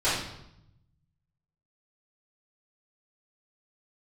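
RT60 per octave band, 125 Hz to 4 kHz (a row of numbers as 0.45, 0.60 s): 1.6, 1.1, 0.80, 0.80, 0.70, 0.70 s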